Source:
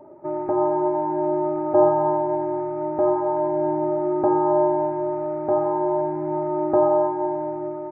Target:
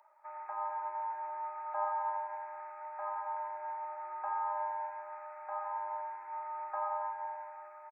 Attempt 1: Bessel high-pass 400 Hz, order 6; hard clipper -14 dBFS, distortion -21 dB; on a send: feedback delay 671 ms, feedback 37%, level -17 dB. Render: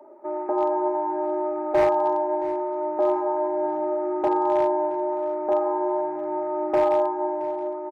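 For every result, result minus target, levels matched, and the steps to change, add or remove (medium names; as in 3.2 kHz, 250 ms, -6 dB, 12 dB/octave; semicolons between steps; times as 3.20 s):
echo 306 ms late; 500 Hz band +9.5 dB
change: feedback delay 365 ms, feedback 37%, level -17 dB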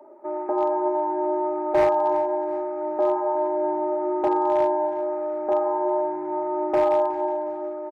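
500 Hz band +9.5 dB
change: Bessel high-pass 1.6 kHz, order 6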